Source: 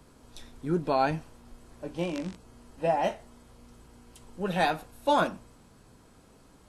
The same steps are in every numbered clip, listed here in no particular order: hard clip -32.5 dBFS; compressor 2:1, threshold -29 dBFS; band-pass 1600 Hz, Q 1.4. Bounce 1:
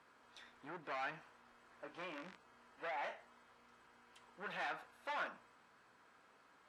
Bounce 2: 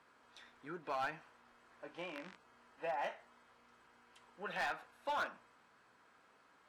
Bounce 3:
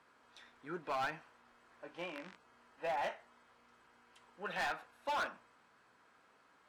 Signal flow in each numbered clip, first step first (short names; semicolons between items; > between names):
compressor > hard clip > band-pass; compressor > band-pass > hard clip; band-pass > compressor > hard clip